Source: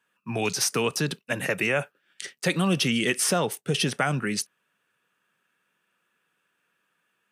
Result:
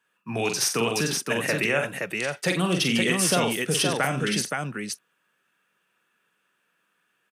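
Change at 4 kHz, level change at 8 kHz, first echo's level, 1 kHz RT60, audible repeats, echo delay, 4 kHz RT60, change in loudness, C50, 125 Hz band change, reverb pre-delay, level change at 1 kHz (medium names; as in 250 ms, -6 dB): +2.0 dB, +2.0 dB, -6.0 dB, no reverb, 3, 44 ms, no reverb, +1.0 dB, no reverb, 0.0 dB, no reverb, +2.0 dB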